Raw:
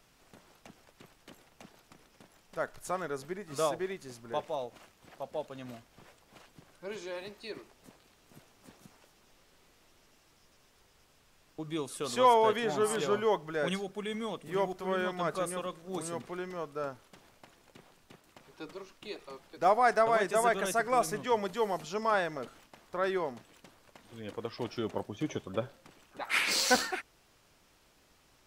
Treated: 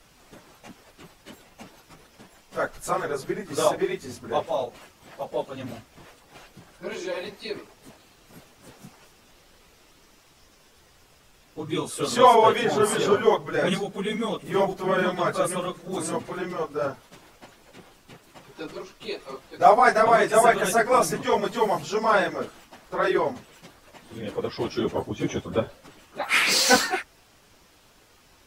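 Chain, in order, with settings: phase scrambler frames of 50 ms; gain +8.5 dB

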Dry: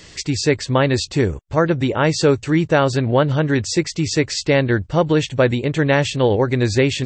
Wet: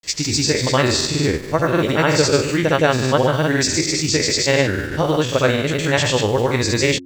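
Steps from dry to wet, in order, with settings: spectral trails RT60 0.86 s; high shelf 3400 Hz +8 dB; in parallel at -5.5 dB: bit-crush 5-bit; on the sum: grains, pitch spread up and down by 0 st; de-hum 89.46 Hz, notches 4; gain -5 dB

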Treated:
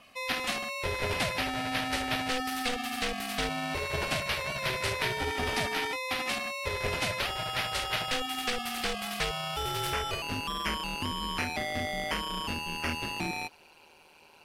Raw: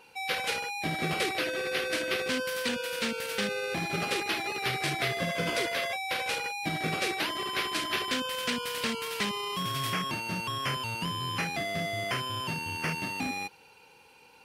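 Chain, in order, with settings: ring modulator 250 Hz, from 10.22 s 78 Hz; gain +2.5 dB

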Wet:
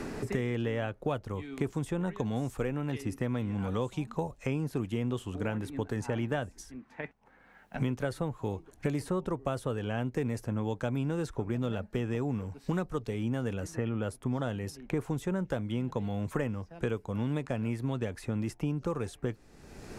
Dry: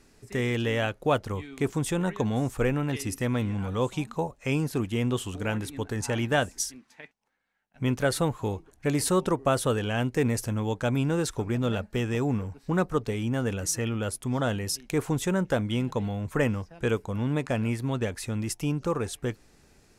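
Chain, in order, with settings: high shelf 2100 Hz -9 dB; three-band squash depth 100%; gain -5.5 dB

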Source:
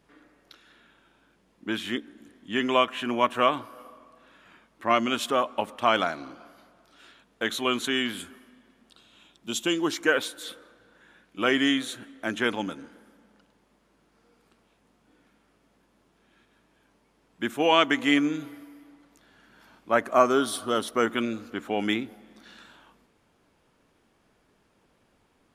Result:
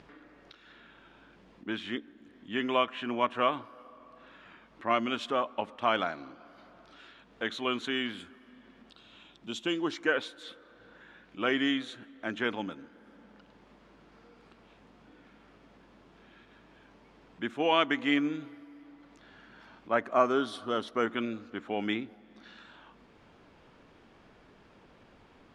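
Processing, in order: upward compressor, threshold -40 dBFS; LPF 4200 Hz 12 dB/oct; gain -5 dB

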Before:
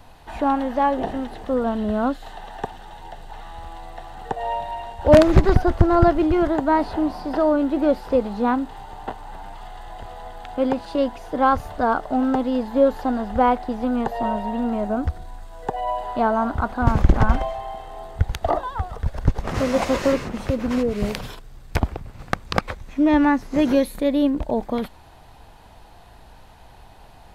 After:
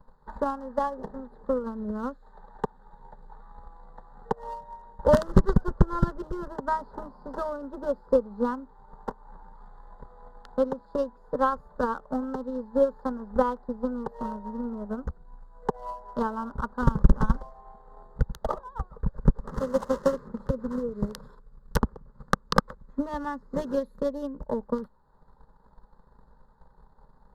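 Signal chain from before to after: Wiener smoothing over 15 samples; transient shaper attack +12 dB, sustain -4 dB; fixed phaser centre 470 Hz, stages 8; gain -9 dB

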